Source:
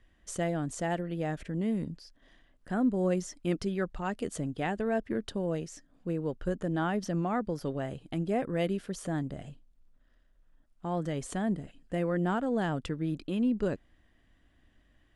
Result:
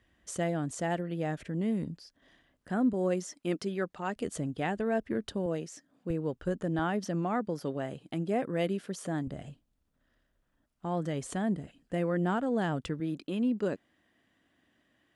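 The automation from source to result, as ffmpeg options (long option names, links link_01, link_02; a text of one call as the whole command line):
ffmpeg -i in.wav -af "asetnsamples=nb_out_samples=441:pad=0,asendcmd='2.93 highpass f 200;4.16 highpass f 49;5.46 highpass f 160;6.1 highpass f 60;6.79 highpass f 140;9.27 highpass f 60;13 highpass f 180',highpass=68" out.wav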